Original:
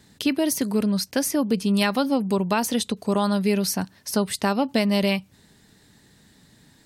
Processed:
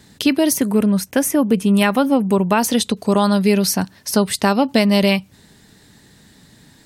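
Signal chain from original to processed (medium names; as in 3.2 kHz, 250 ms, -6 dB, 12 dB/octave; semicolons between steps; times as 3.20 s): 0.57–2.60 s: peaking EQ 4.6 kHz -13.5 dB 0.55 oct; trim +6.5 dB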